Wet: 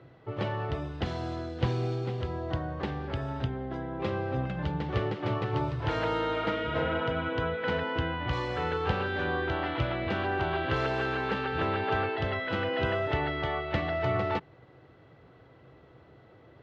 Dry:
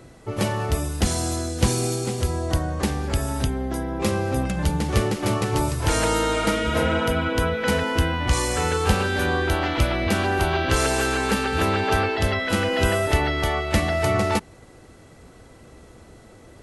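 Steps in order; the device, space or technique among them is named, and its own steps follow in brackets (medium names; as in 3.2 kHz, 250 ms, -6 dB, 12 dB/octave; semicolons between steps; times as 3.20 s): guitar cabinet (cabinet simulation 99–3400 Hz, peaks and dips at 130 Hz +6 dB, 220 Hz -9 dB, 2.4 kHz -4 dB); trim -6.5 dB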